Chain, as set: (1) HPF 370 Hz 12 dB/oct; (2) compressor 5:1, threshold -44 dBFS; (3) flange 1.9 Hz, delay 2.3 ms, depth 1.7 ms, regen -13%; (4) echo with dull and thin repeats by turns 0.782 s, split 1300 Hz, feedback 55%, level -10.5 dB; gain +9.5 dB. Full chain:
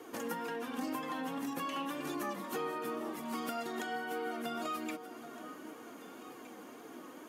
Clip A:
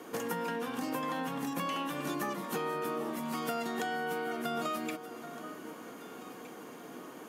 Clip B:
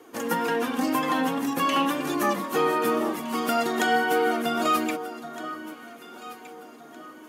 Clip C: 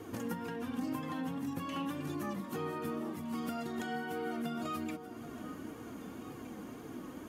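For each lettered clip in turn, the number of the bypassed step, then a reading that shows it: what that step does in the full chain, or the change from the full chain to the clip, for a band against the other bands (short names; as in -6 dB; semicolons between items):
3, 125 Hz band +5.0 dB; 2, mean gain reduction 8.5 dB; 1, 125 Hz band +13.5 dB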